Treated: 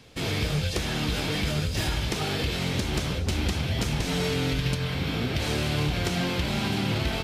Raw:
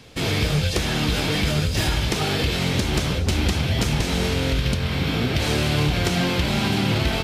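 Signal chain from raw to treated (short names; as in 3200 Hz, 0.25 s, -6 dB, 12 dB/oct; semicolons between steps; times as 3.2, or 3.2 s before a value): 4.05–4.94 comb 6.8 ms, depth 73%; gain -5.5 dB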